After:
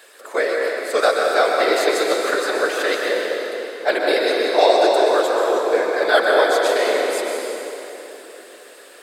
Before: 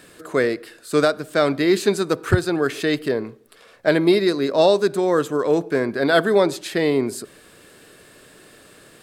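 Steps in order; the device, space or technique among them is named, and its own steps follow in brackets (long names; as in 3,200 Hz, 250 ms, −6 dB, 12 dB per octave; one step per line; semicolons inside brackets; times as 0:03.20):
whispering ghost (random phases in short frames; high-pass filter 450 Hz 24 dB per octave; convolution reverb RT60 3.6 s, pre-delay 116 ms, DRR −1 dB)
level +1.5 dB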